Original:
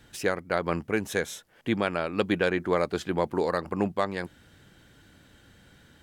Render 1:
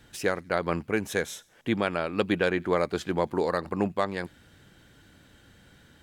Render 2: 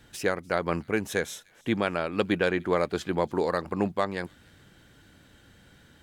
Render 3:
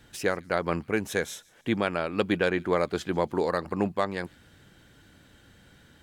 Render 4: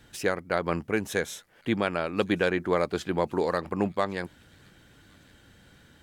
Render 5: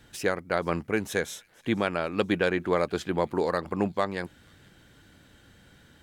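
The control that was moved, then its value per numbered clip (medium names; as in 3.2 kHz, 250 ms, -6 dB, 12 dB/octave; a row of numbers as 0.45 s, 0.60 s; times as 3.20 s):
feedback echo behind a high-pass, time: 91 ms, 296 ms, 147 ms, 1107 ms, 477 ms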